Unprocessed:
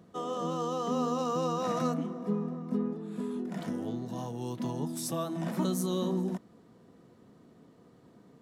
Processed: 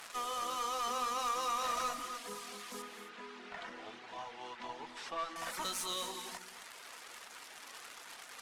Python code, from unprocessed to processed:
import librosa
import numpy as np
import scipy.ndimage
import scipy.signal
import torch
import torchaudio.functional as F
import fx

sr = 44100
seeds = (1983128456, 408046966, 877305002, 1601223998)

y = fx.delta_mod(x, sr, bps=64000, step_db=-42.0)
y = scipy.signal.sosfilt(scipy.signal.butter(2, 1200.0, 'highpass', fs=sr, output='sos'), y)
y = fx.dereverb_blind(y, sr, rt60_s=0.79)
y = fx.lowpass(y, sr, hz=2600.0, slope=12, at=(2.82, 5.36))
y = fx.tube_stage(y, sr, drive_db=39.0, bias=0.45)
y = fx.rev_gated(y, sr, seeds[0], gate_ms=290, shape='rising', drr_db=7.5)
y = y * 10.0 ** (8.0 / 20.0)